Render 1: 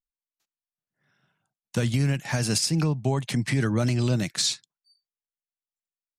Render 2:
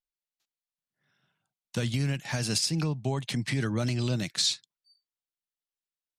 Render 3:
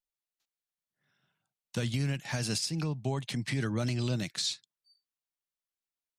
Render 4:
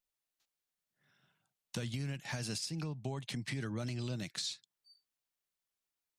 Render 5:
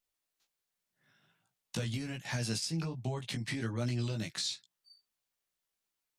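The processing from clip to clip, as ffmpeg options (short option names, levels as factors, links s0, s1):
-af "equalizer=f=3700:t=o:w=1.1:g=5.5,volume=0.562"
-af "alimiter=limit=0.119:level=0:latency=1:release=343,volume=0.75"
-af "acompressor=threshold=0.00708:ratio=2.5,volume=1.33"
-af "flanger=delay=16.5:depth=2:speed=1.3,volume=2"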